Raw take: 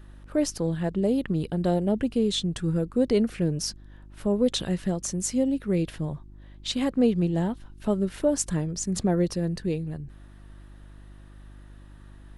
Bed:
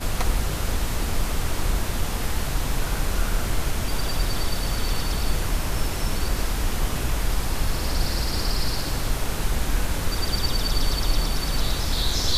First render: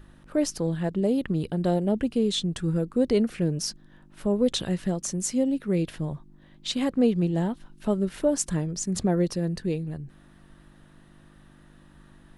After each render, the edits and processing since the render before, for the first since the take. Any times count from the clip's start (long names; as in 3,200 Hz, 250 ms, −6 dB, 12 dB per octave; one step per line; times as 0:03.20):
hum removal 50 Hz, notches 2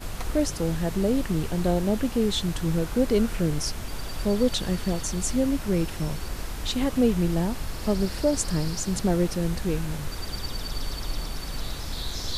mix in bed −8.5 dB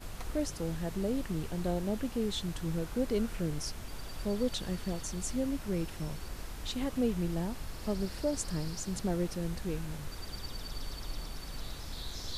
level −9 dB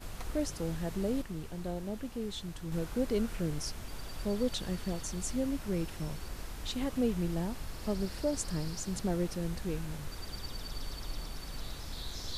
0:01.22–0:02.72: clip gain −5 dB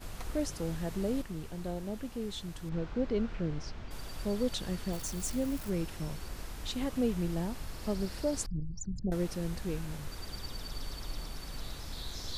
0:02.69–0:03.91: high-frequency loss of the air 180 metres
0:04.93–0:05.70: spike at every zero crossing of −39.5 dBFS
0:08.46–0:09.12: spectral envelope exaggerated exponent 3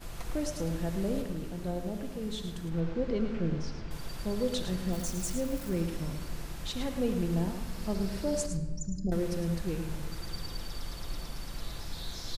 single-tap delay 108 ms −9 dB
rectangular room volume 1,700 cubic metres, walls mixed, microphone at 0.79 metres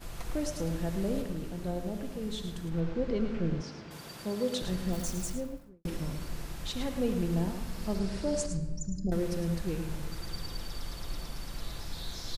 0:03.61–0:04.62: high-pass filter 150 Hz
0:05.13–0:05.85: fade out and dull
0:07.99–0:08.62: low-pass filter 10,000 Hz 24 dB per octave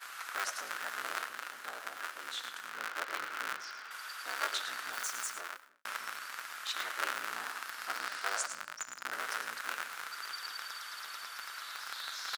sub-harmonics by changed cycles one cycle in 3, inverted
high-pass with resonance 1,400 Hz, resonance Q 3.6